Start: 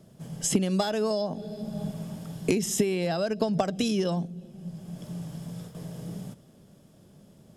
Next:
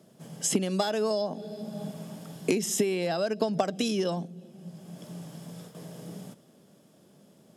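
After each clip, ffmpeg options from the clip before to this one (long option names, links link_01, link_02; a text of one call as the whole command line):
ffmpeg -i in.wav -af "highpass=210" out.wav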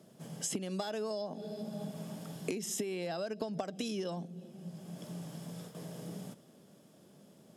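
ffmpeg -i in.wav -af "acompressor=threshold=-36dB:ratio=2.5,volume=-1.5dB" out.wav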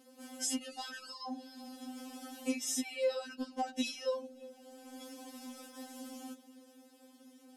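ffmpeg -i in.wav -af "afftfilt=real='re*3.46*eq(mod(b,12),0)':imag='im*3.46*eq(mod(b,12),0)':win_size=2048:overlap=0.75,volume=4.5dB" out.wav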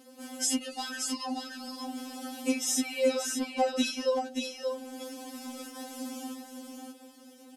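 ffmpeg -i in.wav -af "aecho=1:1:579:0.562,volume=6.5dB" out.wav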